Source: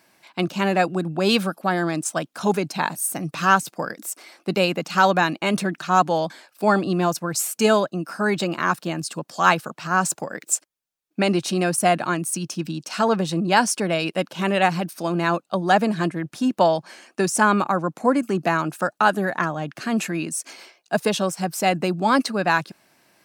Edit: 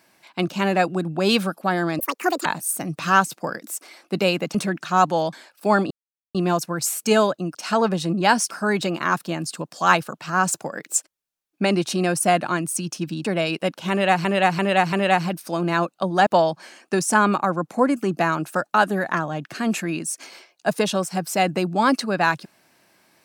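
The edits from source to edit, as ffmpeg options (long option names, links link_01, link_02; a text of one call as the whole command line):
ffmpeg -i in.wav -filter_complex "[0:a]asplit=12[link_01][link_02][link_03][link_04][link_05][link_06][link_07][link_08][link_09][link_10][link_11][link_12];[link_01]atrim=end=1.994[link_13];[link_02]atrim=start=1.99:end=2.81,asetpts=PTS-STARTPTS,asetrate=77616,aresample=44100[link_14];[link_03]atrim=start=2.806:end=4.902[link_15];[link_04]atrim=start=5.518:end=6.88,asetpts=PTS-STARTPTS,afade=type=out:start_time=1.358:duration=0.004:curve=hsin,apad=pad_dur=0.44[link_16];[link_05]atrim=start=6.88:end=8.082,asetpts=PTS-STARTPTS,afade=type=in:duration=0.004:curve=hsin[link_17];[link_06]atrim=start=12.818:end=13.782[link_18];[link_07]atrim=start=8.078:end=12.822[link_19];[link_08]atrim=start=13.778:end=14.782[link_20];[link_09]atrim=start=14.438:end=14.782[link_21];[link_10]atrim=start=14.438:end=14.782[link_22];[link_11]atrim=start=14.438:end=15.782[link_23];[link_12]atrim=start=16.528[link_24];[link_13][link_14]acrossfade=duration=0.004:curve1=hsin:curve2=hsin[link_25];[link_25][link_15]acrossfade=duration=0.004:curve1=hsin:curve2=hsin[link_26];[link_16][link_17]concat=n=2:v=0:a=1[link_27];[link_26][link_27]acrossfade=duration=0.004:curve1=hsin:curve2=hsin[link_28];[link_28][link_18]acrossfade=duration=0.004:curve1=hsin:curve2=hsin[link_29];[link_29][link_19]acrossfade=duration=0.004:curve1=hsin:curve2=hsin[link_30];[link_30][link_20]acrossfade=duration=0.004:curve1=hsin:curve2=hsin[link_31];[link_31][link_21]acrossfade=duration=0.004:curve1=hsin:curve2=hsin[link_32];[link_32][link_22]acrossfade=duration=0.004:curve1=hsin:curve2=hsin[link_33];[link_33][link_23]acrossfade=duration=0.004:curve1=hsin:curve2=hsin[link_34];[link_34][link_24]acrossfade=duration=0.004:curve1=hsin:curve2=hsin" out.wav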